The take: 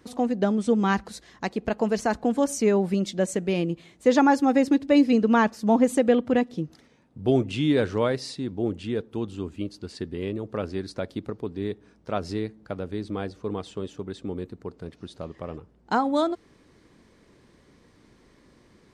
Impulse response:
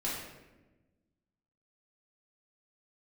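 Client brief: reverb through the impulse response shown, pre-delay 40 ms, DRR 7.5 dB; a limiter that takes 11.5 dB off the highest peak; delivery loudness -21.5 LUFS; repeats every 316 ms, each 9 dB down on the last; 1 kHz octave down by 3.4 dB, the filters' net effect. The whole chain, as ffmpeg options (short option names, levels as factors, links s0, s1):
-filter_complex "[0:a]equalizer=f=1000:t=o:g=-4.5,alimiter=limit=0.106:level=0:latency=1,aecho=1:1:316|632|948|1264:0.355|0.124|0.0435|0.0152,asplit=2[s0][s1];[1:a]atrim=start_sample=2205,adelay=40[s2];[s1][s2]afir=irnorm=-1:irlink=0,volume=0.237[s3];[s0][s3]amix=inputs=2:normalize=0,volume=2.51"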